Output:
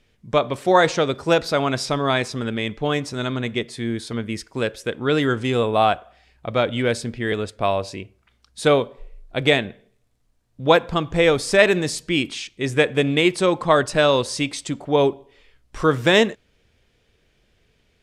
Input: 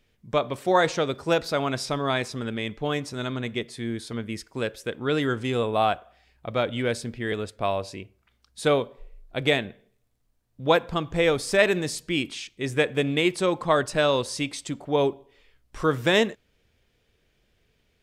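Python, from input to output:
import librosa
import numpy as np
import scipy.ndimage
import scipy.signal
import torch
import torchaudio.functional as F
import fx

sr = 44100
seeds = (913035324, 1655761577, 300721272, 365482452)

y = scipy.signal.sosfilt(scipy.signal.butter(2, 11000.0, 'lowpass', fs=sr, output='sos'), x)
y = y * 10.0 ** (5.0 / 20.0)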